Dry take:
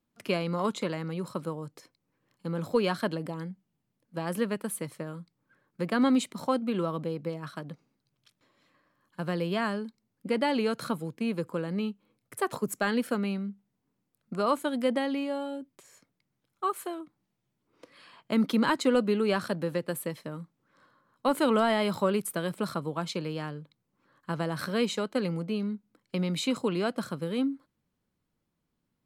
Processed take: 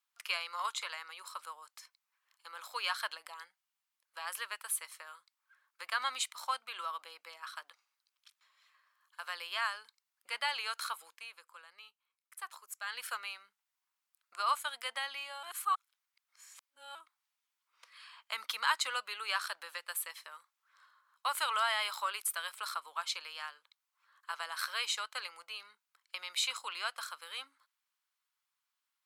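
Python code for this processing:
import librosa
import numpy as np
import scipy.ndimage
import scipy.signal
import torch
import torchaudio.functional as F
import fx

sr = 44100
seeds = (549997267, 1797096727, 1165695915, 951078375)

y = fx.edit(x, sr, fx.fade_down_up(start_s=11.12, length_s=1.93, db=-10.0, fade_s=0.2),
    fx.reverse_span(start_s=15.43, length_s=1.52), tone=tone)
y = scipy.signal.sosfilt(scipy.signal.butter(4, 1100.0, 'highpass', fs=sr, output='sos'), y)
y = fx.peak_eq(y, sr, hz=1800.0, db=-2.5, octaves=0.77)
y = y * librosa.db_to_amplitude(2.0)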